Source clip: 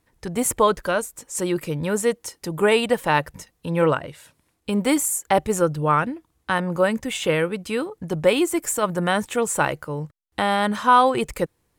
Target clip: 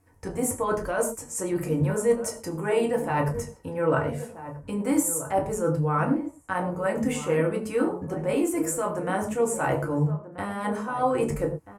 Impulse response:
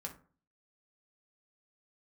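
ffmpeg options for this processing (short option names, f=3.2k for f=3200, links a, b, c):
-filter_complex "[0:a]equalizer=f=3.6k:t=o:w=0.75:g=-14.5,areverse,acompressor=threshold=-27dB:ratio=6,areverse,asplit=2[a][b];[b]adelay=1283,volume=-12dB,highshelf=f=4k:g=-28.9[c];[a][c]amix=inputs=2:normalize=0[d];[1:a]atrim=start_sample=2205,atrim=end_sample=3528,asetrate=24696,aresample=44100[e];[d][e]afir=irnorm=-1:irlink=0,volume=3dB"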